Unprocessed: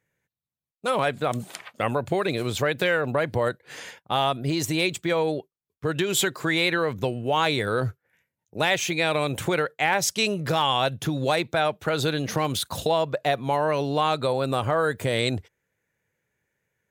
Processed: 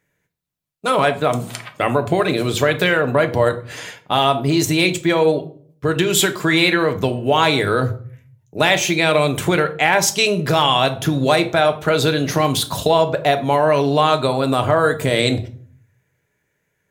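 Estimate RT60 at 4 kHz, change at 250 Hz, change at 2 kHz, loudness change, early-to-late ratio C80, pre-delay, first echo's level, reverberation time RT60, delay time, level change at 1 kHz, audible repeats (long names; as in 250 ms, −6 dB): 0.35 s, +8.5 dB, +7.0 dB, +7.5 dB, 18.5 dB, 3 ms, no echo audible, 0.50 s, no echo audible, +7.0 dB, no echo audible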